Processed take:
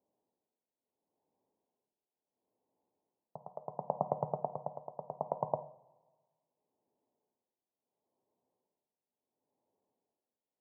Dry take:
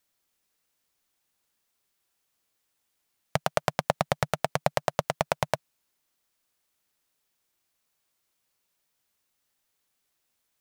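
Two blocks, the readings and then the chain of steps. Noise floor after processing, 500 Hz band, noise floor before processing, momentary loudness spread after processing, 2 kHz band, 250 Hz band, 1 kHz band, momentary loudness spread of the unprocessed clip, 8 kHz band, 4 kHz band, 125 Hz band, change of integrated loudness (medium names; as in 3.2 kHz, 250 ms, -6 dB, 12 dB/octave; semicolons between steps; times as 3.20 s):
under -85 dBFS, -8.5 dB, -78 dBFS, 15 LU, under -40 dB, -11.5 dB, -9.0 dB, 4 LU, under -35 dB, under -40 dB, -12.5 dB, -10.0 dB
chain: peak limiter -11.5 dBFS, peak gain reduction 7.5 dB; high-pass 210 Hz 12 dB/octave; level-controlled noise filter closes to 700 Hz; transient shaper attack -7 dB, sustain +2 dB; elliptic low-pass 980 Hz, stop band 40 dB; tremolo 0.72 Hz, depth 80%; two-slope reverb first 0.48 s, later 1.6 s, from -18 dB, DRR 8 dB; trim +9 dB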